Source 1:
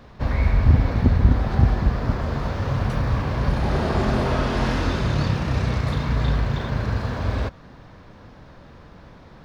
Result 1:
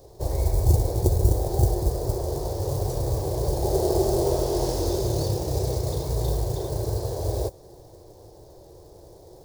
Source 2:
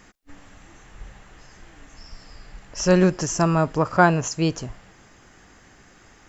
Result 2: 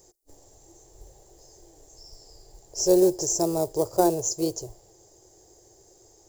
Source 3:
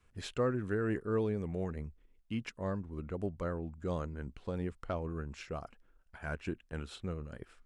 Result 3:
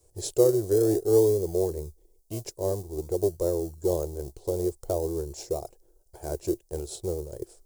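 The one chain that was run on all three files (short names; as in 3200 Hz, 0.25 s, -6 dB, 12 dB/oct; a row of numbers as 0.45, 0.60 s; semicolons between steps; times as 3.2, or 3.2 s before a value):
in parallel at -11 dB: decimation with a swept rate 40×, swing 60% 0.5 Hz; on the sum: low shelf 140 Hz -9 dB; modulation noise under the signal 31 dB; EQ curve 110 Hz 0 dB, 250 Hz -20 dB, 350 Hz +6 dB, 830 Hz -3 dB, 1300 Hz -23 dB, 2700 Hz -20 dB, 4600 Hz 0 dB, 7000 Hz +7 dB, 10000 Hz +9 dB; normalise peaks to -6 dBFS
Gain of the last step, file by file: +1.0, -3.0, +10.0 dB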